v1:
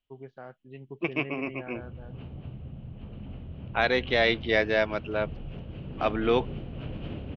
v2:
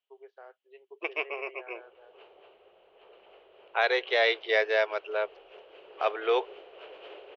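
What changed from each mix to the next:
first voice -4.5 dB; master: add elliptic high-pass 400 Hz, stop band 40 dB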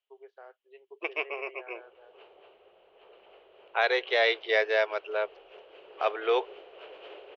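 none

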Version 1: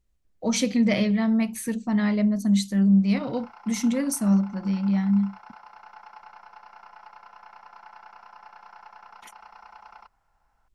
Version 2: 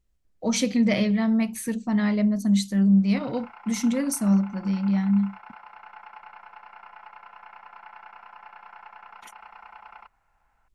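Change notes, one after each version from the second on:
background: add synth low-pass 2500 Hz, resonance Q 2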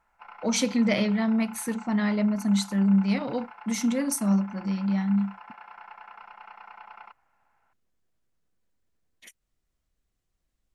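speech: add low shelf 140 Hz -8 dB; background: entry -2.95 s

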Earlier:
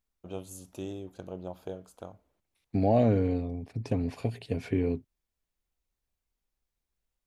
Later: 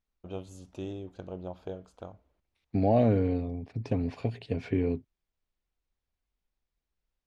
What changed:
first voice: remove HPF 88 Hz; master: add LPF 4900 Hz 12 dB/oct

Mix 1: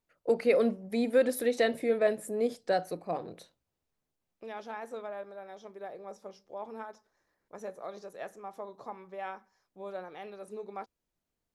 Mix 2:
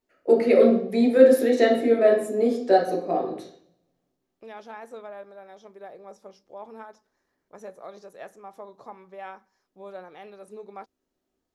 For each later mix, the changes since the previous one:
reverb: on, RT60 0.60 s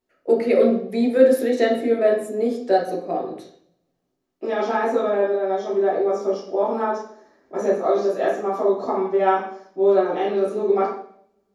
second voice: send on

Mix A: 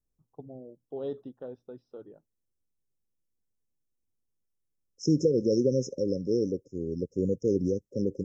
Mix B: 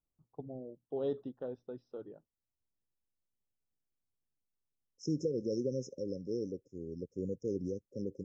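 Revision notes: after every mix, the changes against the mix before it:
second voice -10.0 dB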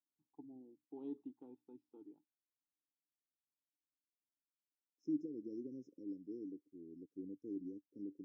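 master: add vowel filter u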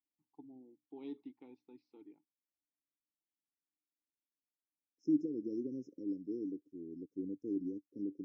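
first voice: remove running mean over 20 samples; second voice +7.0 dB

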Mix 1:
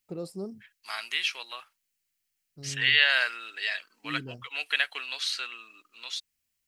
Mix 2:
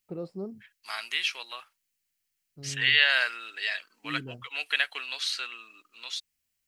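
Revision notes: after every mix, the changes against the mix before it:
first voice: add LPF 2600 Hz 12 dB/oct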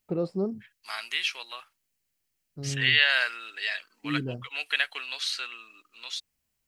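first voice +8.0 dB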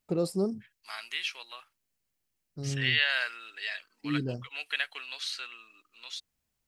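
first voice: remove LPF 2600 Hz 12 dB/oct; second voice -5.0 dB

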